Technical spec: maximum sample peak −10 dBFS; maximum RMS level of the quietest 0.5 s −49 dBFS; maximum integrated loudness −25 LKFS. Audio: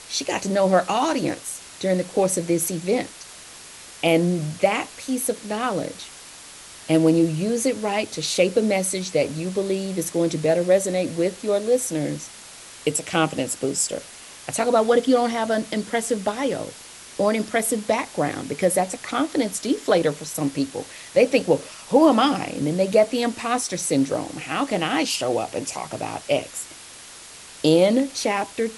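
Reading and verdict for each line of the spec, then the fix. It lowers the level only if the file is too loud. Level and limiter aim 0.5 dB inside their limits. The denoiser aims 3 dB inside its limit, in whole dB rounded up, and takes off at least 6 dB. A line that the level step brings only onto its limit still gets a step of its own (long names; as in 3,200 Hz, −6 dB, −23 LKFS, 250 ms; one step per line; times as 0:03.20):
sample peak −4.0 dBFS: out of spec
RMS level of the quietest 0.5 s −42 dBFS: out of spec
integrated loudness −22.5 LKFS: out of spec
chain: broadband denoise 7 dB, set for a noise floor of −42 dBFS
level −3 dB
brickwall limiter −10.5 dBFS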